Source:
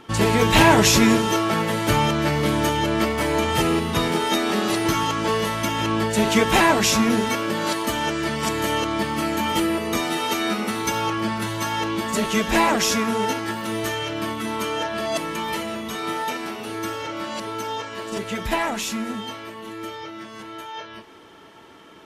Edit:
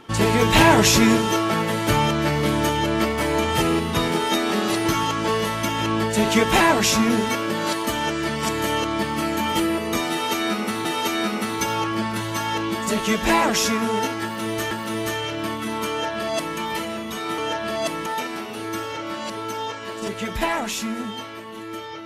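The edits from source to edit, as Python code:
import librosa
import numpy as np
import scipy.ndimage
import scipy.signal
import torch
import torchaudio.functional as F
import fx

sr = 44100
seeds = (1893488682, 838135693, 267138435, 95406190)

y = fx.edit(x, sr, fx.repeat(start_s=10.11, length_s=0.74, count=2),
    fx.repeat(start_s=13.49, length_s=0.48, count=2),
    fx.duplicate(start_s=14.68, length_s=0.68, to_s=16.16), tone=tone)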